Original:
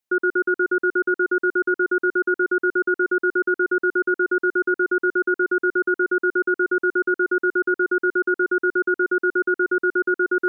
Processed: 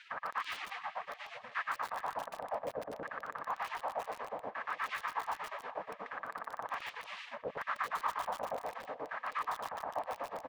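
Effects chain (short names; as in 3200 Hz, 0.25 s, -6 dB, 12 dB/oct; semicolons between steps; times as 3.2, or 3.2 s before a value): per-bin compression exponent 0.6; wind noise 560 Hz -26 dBFS; spectral gate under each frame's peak -30 dB weak; transient shaper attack +3 dB, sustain -9 dB; LFO band-pass saw down 0.66 Hz 410–1600 Hz; outdoor echo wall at 69 m, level -13 dB; lo-fi delay 0.147 s, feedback 80%, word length 8-bit, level -8.5 dB; gain +12.5 dB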